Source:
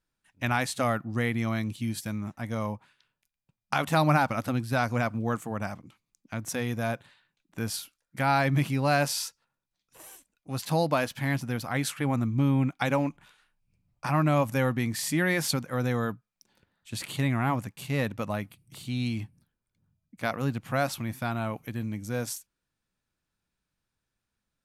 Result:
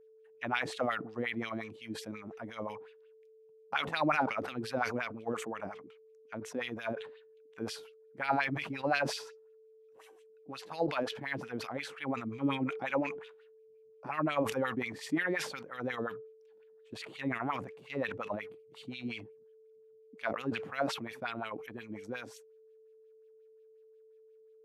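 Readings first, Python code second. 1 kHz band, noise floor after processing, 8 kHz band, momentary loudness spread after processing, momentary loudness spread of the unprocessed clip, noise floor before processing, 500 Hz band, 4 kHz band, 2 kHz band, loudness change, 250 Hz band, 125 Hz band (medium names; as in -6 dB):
-6.0 dB, -60 dBFS, -13.5 dB, 15 LU, 13 LU, -85 dBFS, -5.0 dB, -5.5 dB, -4.5 dB, -7.0 dB, -8.0 dB, -17.5 dB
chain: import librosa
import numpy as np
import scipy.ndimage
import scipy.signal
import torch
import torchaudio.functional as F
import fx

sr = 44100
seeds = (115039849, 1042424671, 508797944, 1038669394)

y = fx.filter_lfo_bandpass(x, sr, shape='sine', hz=5.6, low_hz=310.0, high_hz=3200.0, q=2.6)
y = y + 10.0 ** (-58.0 / 20.0) * np.sin(2.0 * np.pi * 440.0 * np.arange(len(y)) / sr)
y = fx.sustainer(y, sr, db_per_s=82.0)
y = F.gain(torch.from_numpy(y), 1.0).numpy()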